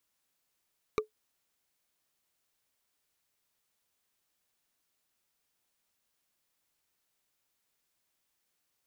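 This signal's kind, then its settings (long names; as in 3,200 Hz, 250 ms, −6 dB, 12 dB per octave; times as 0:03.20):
struck wood, lowest mode 430 Hz, decay 0.12 s, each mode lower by 3 dB, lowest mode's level −21 dB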